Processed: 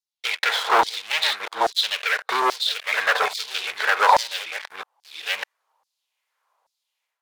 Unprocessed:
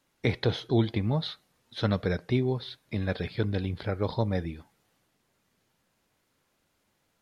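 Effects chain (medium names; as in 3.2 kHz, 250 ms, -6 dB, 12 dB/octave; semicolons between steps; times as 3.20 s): chunks repeated in reverse 604 ms, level -8 dB; high-order bell 670 Hz +15 dB; level rider gain up to 12 dB; waveshaping leveller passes 5; LFO high-pass saw down 1.2 Hz 860–5100 Hz; trim -8.5 dB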